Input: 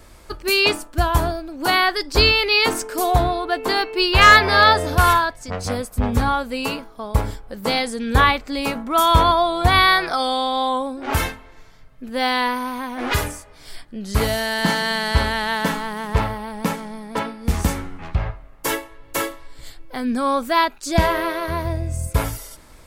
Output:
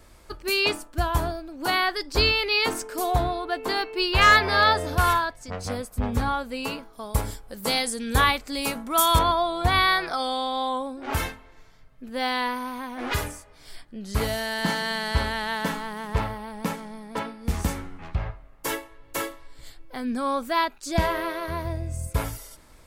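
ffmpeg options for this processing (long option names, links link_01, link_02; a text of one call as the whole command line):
ffmpeg -i in.wav -filter_complex "[0:a]asettb=1/sr,asplit=3[link_01][link_02][link_03];[link_01]atrim=end=6.934[link_04];[link_02]atrim=start=6.93:end=9.19,asetpts=PTS-STARTPTS,afade=type=in:duration=0.004:curve=qsin,afade=type=out:start_time=2.256:duration=0.004:curve=qsin,equalizer=frequency=11000:width_type=o:width=1.9:gain=12[link_05];[link_03]atrim=start=9.186[link_06];[link_04][link_05]acrossfade=duration=0.004:curve1=hsin:curve2=qsin[link_07];[link_07][link_06]acrossfade=duration=0.004:curve1=qsin:curve2=hsin,volume=-6dB" out.wav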